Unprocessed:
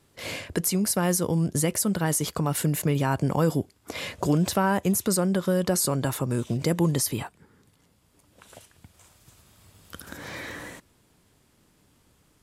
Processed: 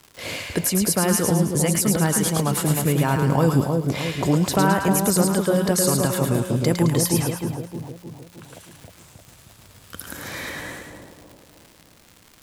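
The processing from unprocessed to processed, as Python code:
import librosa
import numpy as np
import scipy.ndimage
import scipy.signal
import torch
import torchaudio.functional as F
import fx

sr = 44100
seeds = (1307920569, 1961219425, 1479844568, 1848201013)

y = fx.high_shelf(x, sr, hz=6200.0, db=7.0, at=(9.97, 10.5))
y = fx.dmg_crackle(y, sr, seeds[0], per_s=140.0, level_db=-37.0)
y = fx.echo_split(y, sr, split_hz=910.0, low_ms=310, high_ms=108, feedback_pct=52, wet_db=-3.5)
y = y * librosa.db_to_amplitude(3.0)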